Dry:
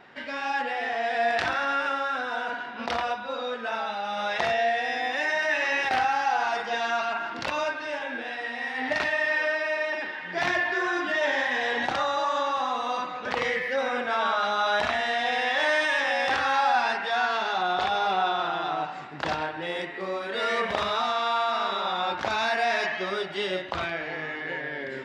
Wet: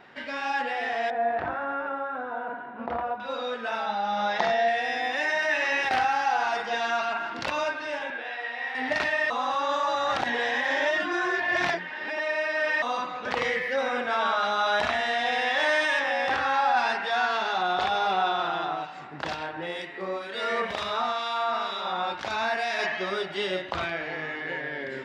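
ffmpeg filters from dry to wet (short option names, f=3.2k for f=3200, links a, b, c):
-filter_complex "[0:a]asettb=1/sr,asplit=3[a][b][c];[a]atrim=end=1.104[d];[b]atrim=start=1.1:end=3.2,asetpts=PTS-STARTPTS,afade=t=in:d=0.004:c=qsin,afade=t=out:st=2.096:d=0.004:c=qsin,lowpass=1.1k[e];[c]atrim=start=3.196[f];[d][e]acrossfade=d=0.004:c1=hsin:c2=qsin[g];[g][f]acrossfade=d=0.004:c1=qsin:c2=hsin,asettb=1/sr,asplit=3[h][i][j];[h]atrim=end=3.864[k];[i]atrim=start=3.86:end=4.68,asetpts=PTS-STARTPTS,afade=t=in:d=0.004:c=qsin,afade=t=out:st=0.816:d=0.004:c=qsin,highpass=160,equalizer=f=200:t=q:w=4:g=7,equalizer=f=850:t=q:w=4:g=5,equalizer=f=2.6k:t=q:w=4:g=-6,lowpass=f=6.6k:w=0.5412,lowpass=f=6.6k:w=1.3066[l];[j]atrim=start=4.676[m];[k][l]acrossfade=d=0.004:c1=hsin:c2=qsin[n];[n][m]acrossfade=d=0.004:c1=qsin:c2=hsin,asettb=1/sr,asplit=3[o][p][q];[o]atrim=end=8.104[r];[p]atrim=start=8.1:end=8.75,asetpts=PTS-STARTPTS,afade=t=in:d=0.004:c=qsin,afade=t=out:st=0.646:d=0.004:c=qsin,acrossover=split=400 4400:gain=0.141 1 0.251[s][t][u];[s][t][u]amix=inputs=3:normalize=0[v];[q]atrim=start=8.746[w];[r][v]acrossfade=d=0.004:c1=hsin:c2=qsin[x];[x][w]acrossfade=d=0.004:c1=qsin:c2=hsin,asettb=1/sr,asplit=3[y][z][aa];[y]atrim=end=15.994[ab];[z]atrim=start=15.99:end=16.77,asetpts=PTS-STARTPTS,afade=t=in:d=0.004:c=qsin,afade=t=out:st=0.776:d=0.004:c=qsin,highshelf=f=3.5k:g=-7[ac];[aa]atrim=start=16.766[ad];[ab][ac]acrossfade=d=0.004:c1=hsin:c2=qsin[ae];[ae][ad]acrossfade=d=0.004:c1=qsin:c2=hsin,asettb=1/sr,asplit=3[af][ag][ah];[af]atrim=end=18.654[ai];[ag]atrim=start=18.65:end=22.79,asetpts=PTS-STARTPTS,afade=t=in:d=0.004:c=qsin,afade=t=out:st=4.136:d=0.004:c=qsin,acrossover=split=2100[aj][ak];[aj]aeval=exprs='val(0)*(1-0.5/2+0.5/2*cos(2*PI*2.1*n/s))':c=same[al];[ak]aeval=exprs='val(0)*(1-0.5/2-0.5/2*cos(2*PI*2.1*n/s))':c=same[am];[al][am]amix=inputs=2:normalize=0[an];[ah]atrim=start=22.786[ao];[ai][an]acrossfade=d=0.004:c1=hsin:c2=qsin[ap];[ap][ao]acrossfade=d=0.004:c1=qsin:c2=hsin,asplit=3[aq][ar][as];[aq]atrim=end=9.302[at];[ar]atrim=start=9.298:end=12.822,asetpts=PTS-STARTPTS,areverse[au];[as]atrim=start=12.818[av];[at][au]acrossfade=d=0.004:c1=hsin:c2=hsin[aw];[aw][av]acrossfade=d=0.004:c1=hsin:c2=hsin"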